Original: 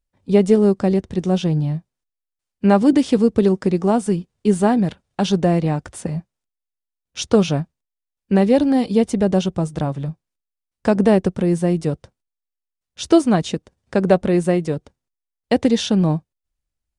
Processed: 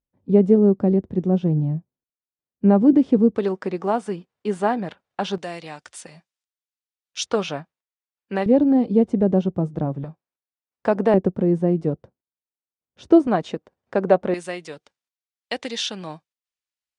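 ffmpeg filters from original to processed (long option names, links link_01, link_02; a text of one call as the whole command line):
ffmpeg -i in.wav -af "asetnsamples=nb_out_samples=441:pad=0,asendcmd='3.35 bandpass f 1200;5.38 bandpass f 4100;7.26 bandpass f 1500;8.46 bandpass f 290;10.04 bandpass f 860;11.14 bandpass f 330;13.27 bandpass f 790;14.34 bandpass f 3200',bandpass=frequency=250:width_type=q:width=0.6:csg=0" out.wav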